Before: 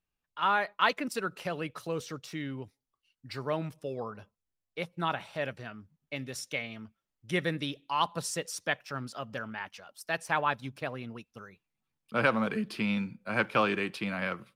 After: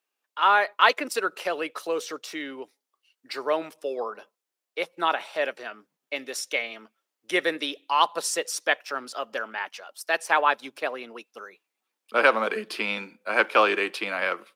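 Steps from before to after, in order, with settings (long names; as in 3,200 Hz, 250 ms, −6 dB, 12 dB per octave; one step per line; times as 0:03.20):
high-pass filter 340 Hz 24 dB per octave
level +7.5 dB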